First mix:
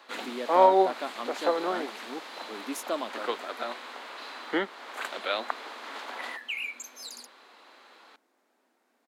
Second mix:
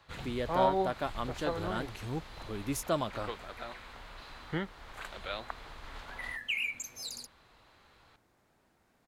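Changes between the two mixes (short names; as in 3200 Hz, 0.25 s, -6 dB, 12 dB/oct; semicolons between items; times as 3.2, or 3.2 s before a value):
first sound -9.5 dB; master: remove elliptic high-pass 240 Hz, stop band 50 dB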